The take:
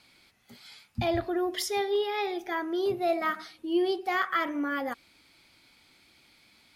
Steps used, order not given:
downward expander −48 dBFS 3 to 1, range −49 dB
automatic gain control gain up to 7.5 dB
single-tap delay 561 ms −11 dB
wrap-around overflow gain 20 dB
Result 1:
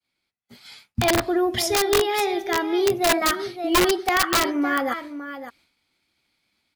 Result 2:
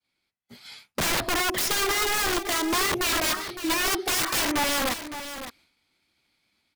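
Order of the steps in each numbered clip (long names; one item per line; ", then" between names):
downward expander, then single-tap delay, then wrap-around overflow, then automatic gain control
downward expander, then automatic gain control, then wrap-around overflow, then single-tap delay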